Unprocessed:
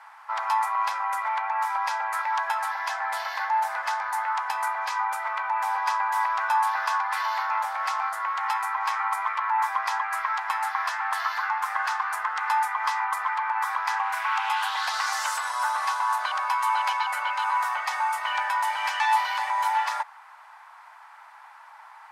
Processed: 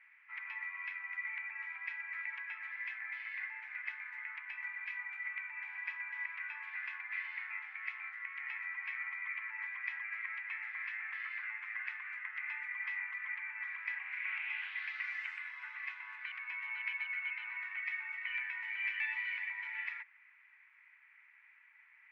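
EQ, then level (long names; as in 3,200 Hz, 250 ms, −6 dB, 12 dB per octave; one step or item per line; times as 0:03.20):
flat-topped band-pass 2,200 Hz, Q 3.6
−1.5 dB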